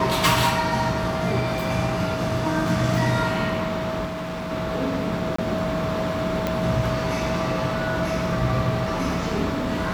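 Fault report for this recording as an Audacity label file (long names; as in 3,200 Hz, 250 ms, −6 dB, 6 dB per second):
4.050000	4.520000	clipping −27 dBFS
5.360000	5.380000	drop-out 24 ms
6.470000	6.470000	click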